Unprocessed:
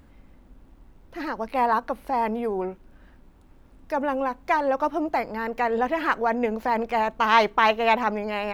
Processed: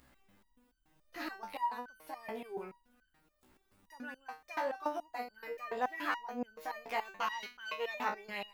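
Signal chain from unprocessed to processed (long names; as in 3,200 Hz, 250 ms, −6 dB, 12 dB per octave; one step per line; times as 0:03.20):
spectral tilt +2.5 dB per octave
in parallel at −1 dB: downward compressor, threshold −31 dBFS, peak gain reduction 18.5 dB
on the sum: step-sequenced resonator 7 Hz 63–1,500 Hz
level −4 dB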